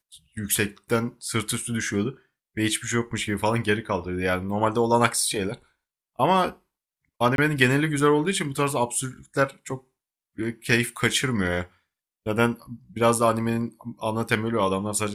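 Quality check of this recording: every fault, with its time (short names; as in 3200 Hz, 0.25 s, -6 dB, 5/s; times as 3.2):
7.36–7.38 gap 22 ms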